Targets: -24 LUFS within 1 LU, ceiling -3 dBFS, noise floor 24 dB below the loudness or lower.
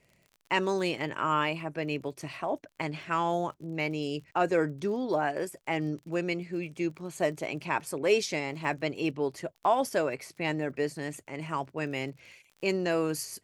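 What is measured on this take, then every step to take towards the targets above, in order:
ticks 34/s; loudness -31.0 LUFS; peak -11.5 dBFS; loudness target -24.0 LUFS
-> de-click; gain +7 dB

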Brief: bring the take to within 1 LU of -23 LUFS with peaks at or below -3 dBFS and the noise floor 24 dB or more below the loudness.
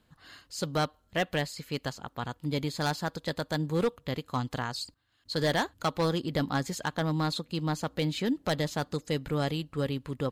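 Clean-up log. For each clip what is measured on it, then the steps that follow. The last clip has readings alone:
clipped 1.0%; flat tops at -21.0 dBFS; loudness -31.5 LUFS; peak -21.0 dBFS; loudness target -23.0 LUFS
-> clip repair -21 dBFS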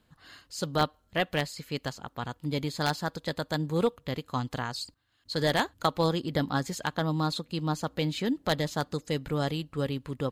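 clipped 0.0%; loudness -31.0 LUFS; peak -12.0 dBFS; loudness target -23.0 LUFS
-> gain +8 dB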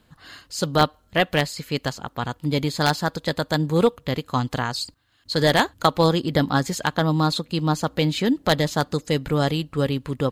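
loudness -23.0 LUFS; peak -4.0 dBFS; noise floor -61 dBFS

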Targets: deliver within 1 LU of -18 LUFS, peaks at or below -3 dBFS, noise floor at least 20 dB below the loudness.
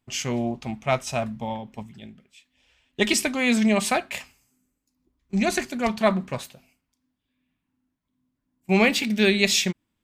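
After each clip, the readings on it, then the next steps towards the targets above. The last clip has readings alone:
loudness -23.5 LUFS; peak -4.5 dBFS; loudness target -18.0 LUFS
-> gain +5.5 dB; limiter -3 dBFS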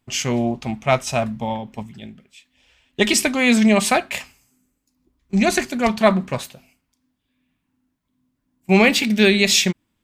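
loudness -18.0 LUFS; peak -3.0 dBFS; noise floor -74 dBFS

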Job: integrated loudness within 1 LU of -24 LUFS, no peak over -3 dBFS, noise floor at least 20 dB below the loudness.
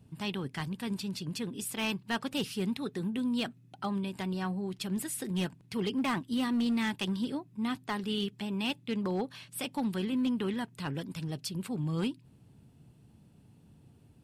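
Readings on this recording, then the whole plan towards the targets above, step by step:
clipped 0.7%; flat tops at -25.0 dBFS; loudness -34.0 LUFS; peak -25.0 dBFS; loudness target -24.0 LUFS
-> clip repair -25 dBFS; gain +10 dB

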